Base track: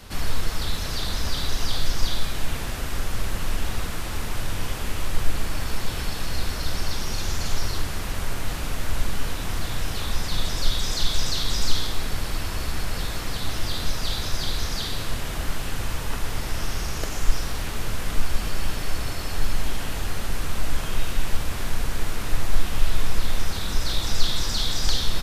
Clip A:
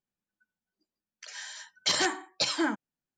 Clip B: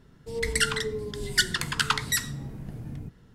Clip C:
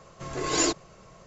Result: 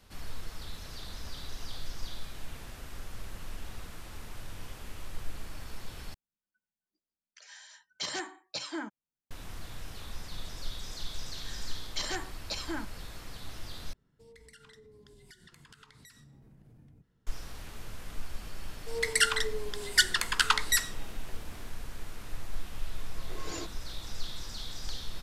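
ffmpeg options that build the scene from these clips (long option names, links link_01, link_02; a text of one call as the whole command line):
ffmpeg -i bed.wav -i cue0.wav -i cue1.wav -i cue2.wav -filter_complex "[1:a]asplit=2[link_01][link_02];[2:a]asplit=2[link_03][link_04];[0:a]volume=-15.5dB[link_05];[link_01]lowshelf=frequency=77:gain=6.5[link_06];[link_03]acompressor=threshold=-35dB:ratio=6:attack=3.2:release=140:knee=1:detection=peak[link_07];[link_04]highpass=490[link_08];[3:a]lowpass=6500[link_09];[link_05]asplit=3[link_10][link_11][link_12];[link_10]atrim=end=6.144[link_13];[link_06]atrim=end=3.17,asetpts=PTS-STARTPTS,volume=-9.5dB[link_14];[link_11]atrim=start=9.306:end=13.934[link_15];[link_07]atrim=end=3.34,asetpts=PTS-STARTPTS,volume=-17dB[link_16];[link_12]atrim=start=17.266[link_17];[link_02]atrim=end=3.17,asetpts=PTS-STARTPTS,volume=-9dB,afade=type=in:duration=0.004:curve=hsin,afade=type=out:start_time=3.166:duration=0.004:curve=hsin,adelay=445410S[link_18];[link_08]atrim=end=3.34,asetpts=PTS-STARTPTS,afade=type=in:duration=0.004:curve=hsin,afade=type=out:start_time=3.336:duration=0.004:curve=hsin,adelay=820260S[link_19];[link_09]atrim=end=1.26,asetpts=PTS-STARTPTS,volume=-15dB,afade=type=in:duration=0.004:curve=hsin,afade=type=out:start_time=1.256:duration=0.004:curve=hsin,adelay=22940[link_20];[link_13][link_14]acrossfade=duration=0.004:curve1=hsin:curve2=hsin[link_21];[link_21][link_15]acrossfade=duration=0.004:curve1=hsin:curve2=hsin[link_22];[link_22][link_16]acrossfade=duration=0.004:curve1=hsin:curve2=hsin[link_23];[link_23][link_17]acrossfade=duration=0.004:curve1=hsin:curve2=hsin[link_24];[link_24][link_18][link_19][link_20]amix=inputs=4:normalize=0" out.wav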